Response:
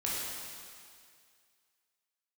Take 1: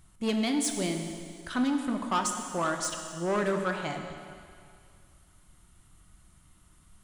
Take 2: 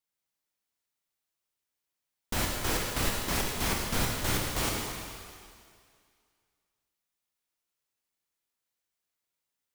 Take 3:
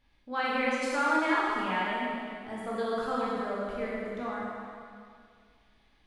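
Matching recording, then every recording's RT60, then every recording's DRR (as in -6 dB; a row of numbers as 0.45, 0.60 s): 3; 2.1, 2.1, 2.1 s; 4.0, -1.5, -6.5 dB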